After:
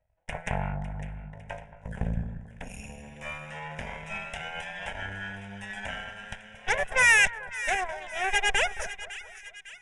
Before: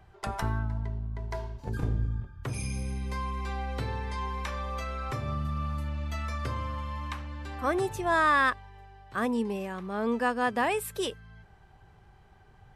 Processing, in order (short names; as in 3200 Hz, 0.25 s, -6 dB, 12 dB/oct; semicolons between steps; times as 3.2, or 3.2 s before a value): speed glide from 81% -> 179%; dynamic EQ 1400 Hz, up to +7 dB, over -43 dBFS, Q 0.89; added harmonics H 7 -16 dB, 8 -12 dB, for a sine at -8.5 dBFS; fixed phaser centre 1200 Hz, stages 6; on a send: split-band echo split 1500 Hz, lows 0.221 s, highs 0.554 s, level -13.5 dB; on the sum: downsampling 22050 Hz